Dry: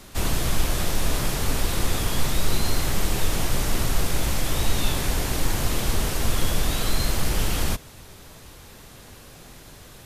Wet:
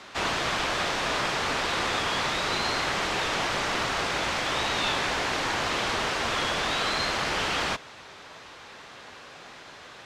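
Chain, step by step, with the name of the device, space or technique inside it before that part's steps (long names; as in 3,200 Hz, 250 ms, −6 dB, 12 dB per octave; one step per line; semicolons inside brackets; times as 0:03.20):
filter by subtraction (in parallel: low-pass filter 1,200 Hz 12 dB per octave + polarity inversion)
on the sum: high-frequency loss of the air 140 metres
level +5.5 dB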